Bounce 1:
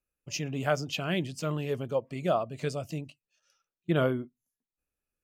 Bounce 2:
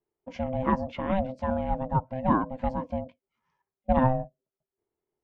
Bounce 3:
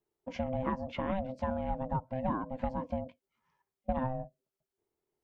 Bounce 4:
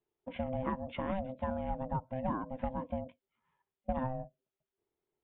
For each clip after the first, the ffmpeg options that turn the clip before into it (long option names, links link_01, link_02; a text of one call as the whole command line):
ffmpeg -i in.wav -af "aeval=exprs='val(0)*sin(2*PI*390*n/s)':channel_layout=same,lowpass=1200,volume=7dB" out.wav
ffmpeg -i in.wav -af "acompressor=threshold=-29dB:ratio=6" out.wav
ffmpeg -i in.wav -af "aresample=8000,aresample=44100,volume=-2dB" out.wav